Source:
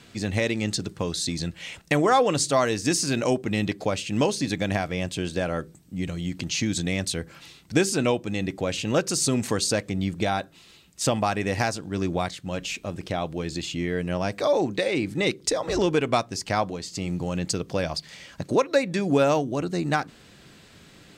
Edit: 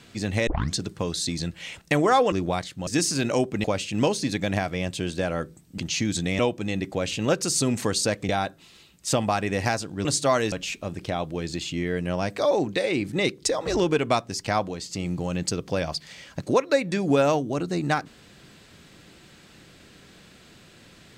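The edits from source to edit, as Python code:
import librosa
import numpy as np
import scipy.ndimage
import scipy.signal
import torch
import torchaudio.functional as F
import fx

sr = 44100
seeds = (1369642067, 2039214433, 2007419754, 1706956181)

y = fx.edit(x, sr, fx.tape_start(start_s=0.47, length_s=0.28),
    fx.swap(start_s=2.32, length_s=0.47, other_s=11.99, other_length_s=0.55),
    fx.cut(start_s=3.56, length_s=0.26),
    fx.cut(start_s=5.96, length_s=0.43),
    fx.cut(start_s=7.0, length_s=1.05),
    fx.cut(start_s=9.95, length_s=0.28), tone=tone)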